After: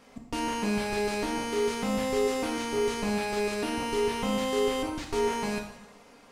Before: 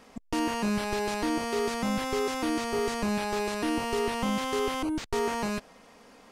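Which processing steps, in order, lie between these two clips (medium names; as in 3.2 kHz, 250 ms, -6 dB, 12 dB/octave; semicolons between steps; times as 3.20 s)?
two-slope reverb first 0.76 s, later 2.1 s, DRR 0.5 dB; trim -3 dB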